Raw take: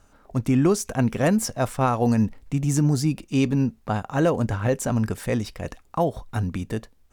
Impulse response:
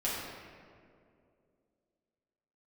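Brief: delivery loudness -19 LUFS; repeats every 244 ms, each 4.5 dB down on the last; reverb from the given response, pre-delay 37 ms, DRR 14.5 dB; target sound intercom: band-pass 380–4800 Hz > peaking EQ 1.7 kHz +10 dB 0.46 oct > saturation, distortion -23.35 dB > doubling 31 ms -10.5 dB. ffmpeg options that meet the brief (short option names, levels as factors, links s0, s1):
-filter_complex "[0:a]aecho=1:1:244|488|732|976|1220|1464|1708|1952|2196:0.596|0.357|0.214|0.129|0.0772|0.0463|0.0278|0.0167|0.01,asplit=2[s0][s1];[1:a]atrim=start_sample=2205,adelay=37[s2];[s1][s2]afir=irnorm=-1:irlink=0,volume=0.0841[s3];[s0][s3]amix=inputs=2:normalize=0,highpass=380,lowpass=4800,equalizer=f=1700:t=o:w=0.46:g=10,asoftclip=threshold=0.355,asplit=2[s4][s5];[s5]adelay=31,volume=0.299[s6];[s4][s6]amix=inputs=2:normalize=0,volume=2.24"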